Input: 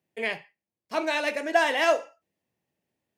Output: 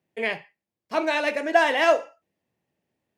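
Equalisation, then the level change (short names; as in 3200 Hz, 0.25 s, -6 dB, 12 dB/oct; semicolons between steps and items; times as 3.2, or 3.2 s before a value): high shelf 4300 Hz -7 dB; +3.5 dB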